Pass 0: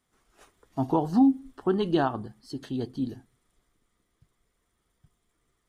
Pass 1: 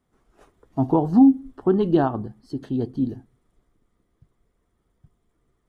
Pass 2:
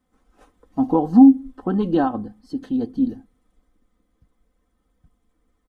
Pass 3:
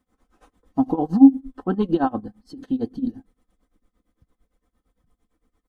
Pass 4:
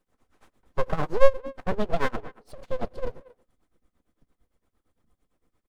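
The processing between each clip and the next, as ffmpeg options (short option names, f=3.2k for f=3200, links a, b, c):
-af "tiltshelf=f=1.3k:g=7"
-af "aecho=1:1:3.9:0.76,volume=-1dB"
-af "tremolo=f=8.8:d=0.9,volume=2dB"
-filter_complex "[0:a]aeval=exprs='abs(val(0))':c=same,asplit=2[a][b];[b]adelay=230,highpass=300,lowpass=3.4k,asoftclip=type=hard:threshold=-11dB,volume=-19dB[c];[a][c]amix=inputs=2:normalize=0,volume=-1.5dB"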